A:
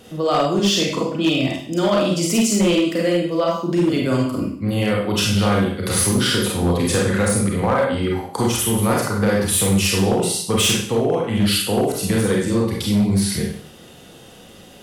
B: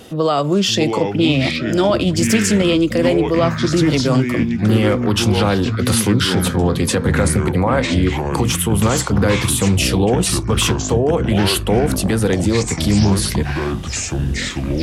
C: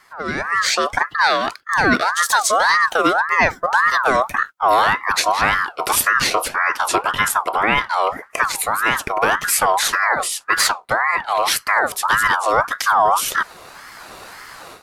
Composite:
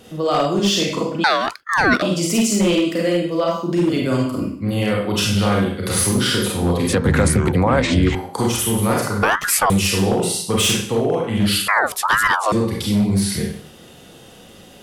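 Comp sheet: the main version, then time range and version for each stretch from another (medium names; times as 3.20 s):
A
1.24–2.02 s: from C
6.93–8.15 s: from B
9.23–9.70 s: from C
11.68–12.52 s: from C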